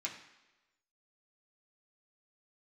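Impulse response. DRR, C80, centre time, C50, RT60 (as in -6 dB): -3.5 dB, 10.5 dB, 24 ms, 8.0 dB, 1.1 s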